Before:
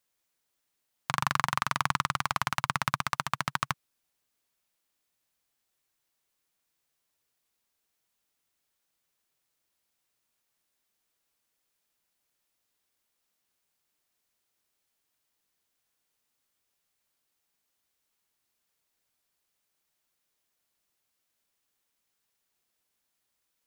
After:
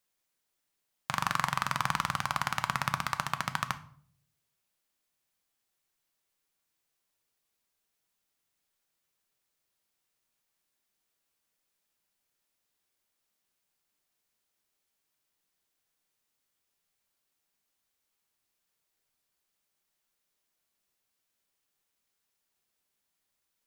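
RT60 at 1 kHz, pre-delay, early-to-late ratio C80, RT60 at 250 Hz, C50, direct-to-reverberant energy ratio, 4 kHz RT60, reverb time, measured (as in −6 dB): 0.50 s, 5 ms, 20.0 dB, 0.80 s, 15.5 dB, 9.5 dB, 0.40 s, 0.55 s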